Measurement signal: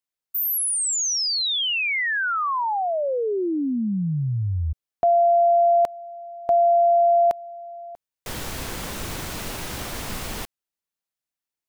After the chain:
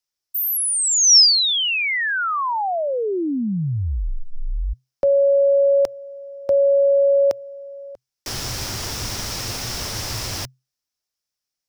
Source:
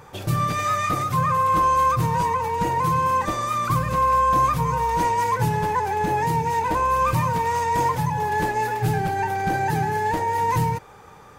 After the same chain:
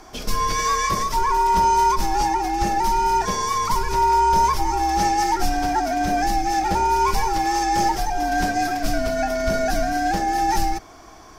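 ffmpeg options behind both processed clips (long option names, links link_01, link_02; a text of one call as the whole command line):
ffmpeg -i in.wav -af "equalizer=frequency=5500:width_type=o:width=0.51:gain=13,afreqshift=-130,volume=1.5dB" out.wav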